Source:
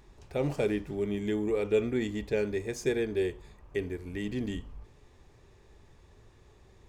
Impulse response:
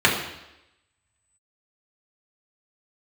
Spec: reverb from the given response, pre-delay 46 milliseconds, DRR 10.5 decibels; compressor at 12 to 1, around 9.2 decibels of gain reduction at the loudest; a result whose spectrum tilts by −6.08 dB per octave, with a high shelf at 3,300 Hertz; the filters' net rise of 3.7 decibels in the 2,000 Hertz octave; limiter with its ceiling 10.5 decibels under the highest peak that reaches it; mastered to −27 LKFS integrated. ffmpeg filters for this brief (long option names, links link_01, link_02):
-filter_complex "[0:a]equalizer=frequency=2000:width_type=o:gain=5.5,highshelf=frequency=3300:gain=-3.5,acompressor=threshold=-31dB:ratio=12,alimiter=level_in=7dB:limit=-24dB:level=0:latency=1,volume=-7dB,asplit=2[link_01][link_02];[1:a]atrim=start_sample=2205,adelay=46[link_03];[link_02][link_03]afir=irnorm=-1:irlink=0,volume=-31.5dB[link_04];[link_01][link_04]amix=inputs=2:normalize=0,volume=13dB"